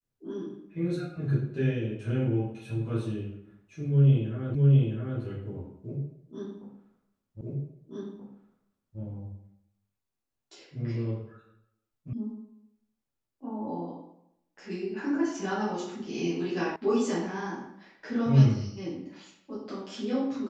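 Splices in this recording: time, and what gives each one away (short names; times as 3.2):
4.55 repeat of the last 0.66 s
7.41 repeat of the last 1.58 s
12.13 sound cut off
16.76 sound cut off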